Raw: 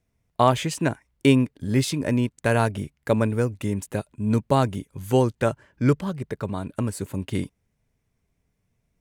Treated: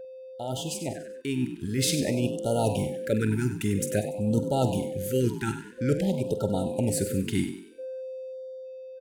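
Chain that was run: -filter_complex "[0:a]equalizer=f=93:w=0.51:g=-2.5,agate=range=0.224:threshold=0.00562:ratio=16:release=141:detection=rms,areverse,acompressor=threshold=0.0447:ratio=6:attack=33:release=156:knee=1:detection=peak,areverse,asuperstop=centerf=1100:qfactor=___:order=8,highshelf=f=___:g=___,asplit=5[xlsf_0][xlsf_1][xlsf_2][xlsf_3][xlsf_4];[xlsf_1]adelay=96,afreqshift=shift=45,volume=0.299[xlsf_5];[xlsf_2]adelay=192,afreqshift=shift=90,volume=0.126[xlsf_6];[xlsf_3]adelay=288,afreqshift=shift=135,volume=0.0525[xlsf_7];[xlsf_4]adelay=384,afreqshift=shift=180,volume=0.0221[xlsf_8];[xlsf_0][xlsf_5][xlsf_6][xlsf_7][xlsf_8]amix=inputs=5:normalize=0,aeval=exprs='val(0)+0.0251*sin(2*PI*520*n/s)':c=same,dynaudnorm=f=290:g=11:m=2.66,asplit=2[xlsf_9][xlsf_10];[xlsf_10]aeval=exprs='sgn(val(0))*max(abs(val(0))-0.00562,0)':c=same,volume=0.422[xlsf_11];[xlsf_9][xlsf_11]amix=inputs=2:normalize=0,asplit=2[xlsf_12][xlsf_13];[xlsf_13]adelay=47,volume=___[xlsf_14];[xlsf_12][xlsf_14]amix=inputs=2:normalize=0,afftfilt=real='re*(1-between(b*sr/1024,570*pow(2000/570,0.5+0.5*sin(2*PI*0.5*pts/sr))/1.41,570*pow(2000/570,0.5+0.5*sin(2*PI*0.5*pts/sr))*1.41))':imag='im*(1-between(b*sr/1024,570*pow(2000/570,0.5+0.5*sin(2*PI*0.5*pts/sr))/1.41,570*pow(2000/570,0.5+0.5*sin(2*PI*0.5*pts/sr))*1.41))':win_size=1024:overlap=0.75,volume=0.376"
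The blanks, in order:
2.6, 6800, 5, 0.251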